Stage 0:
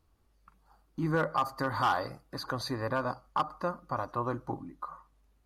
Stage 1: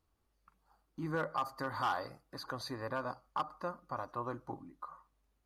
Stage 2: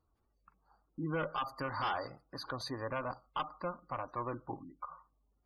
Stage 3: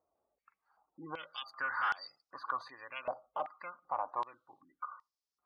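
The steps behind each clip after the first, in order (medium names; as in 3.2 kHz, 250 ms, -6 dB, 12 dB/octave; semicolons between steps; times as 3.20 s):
bass shelf 210 Hz -4.5 dB; trim -6 dB
Chebyshev shaper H 5 -9 dB, 6 -25 dB, 7 -16 dB, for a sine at -23.5 dBFS; spectral gate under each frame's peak -25 dB strong; trim -3 dB
step-sequenced band-pass 2.6 Hz 630–5100 Hz; trim +10 dB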